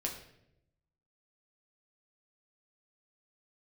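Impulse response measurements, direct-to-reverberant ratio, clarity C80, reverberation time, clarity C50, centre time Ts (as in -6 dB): -0.5 dB, 10.0 dB, 0.80 s, 7.0 dB, 26 ms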